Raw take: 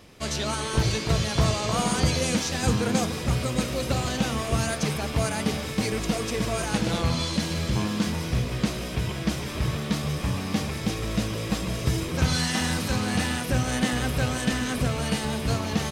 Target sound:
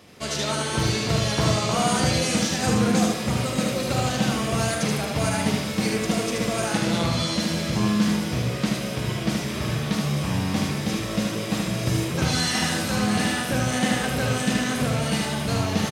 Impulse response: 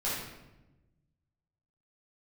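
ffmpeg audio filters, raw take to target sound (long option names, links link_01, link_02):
-filter_complex "[0:a]highpass=110,asplit=2[link_01][link_02];[link_02]adelay=43,volume=-11.5dB[link_03];[link_01][link_03]amix=inputs=2:normalize=0,aecho=1:1:76:0.708,asplit=2[link_04][link_05];[1:a]atrim=start_sample=2205,asetrate=57330,aresample=44100[link_06];[link_05][link_06]afir=irnorm=-1:irlink=0,volume=-14dB[link_07];[link_04][link_07]amix=inputs=2:normalize=0"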